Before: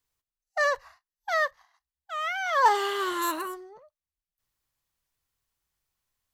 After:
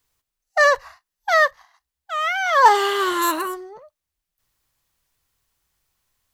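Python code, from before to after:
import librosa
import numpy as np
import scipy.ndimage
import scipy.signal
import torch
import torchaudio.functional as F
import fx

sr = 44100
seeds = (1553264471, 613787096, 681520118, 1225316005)

y = fx.rider(x, sr, range_db=10, speed_s=2.0)
y = F.gain(torch.from_numpy(y), 7.5).numpy()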